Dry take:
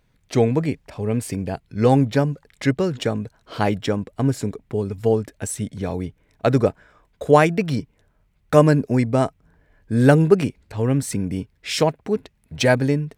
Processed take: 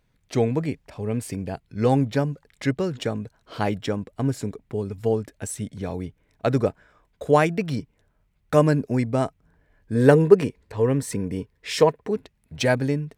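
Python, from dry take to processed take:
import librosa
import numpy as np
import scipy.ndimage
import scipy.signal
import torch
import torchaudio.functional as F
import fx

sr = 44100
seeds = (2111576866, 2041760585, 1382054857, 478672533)

y = fx.small_body(x, sr, hz=(460.0, 1000.0, 1800.0), ring_ms=25, db=9, at=(9.95, 12.11))
y = y * librosa.db_to_amplitude(-4.0)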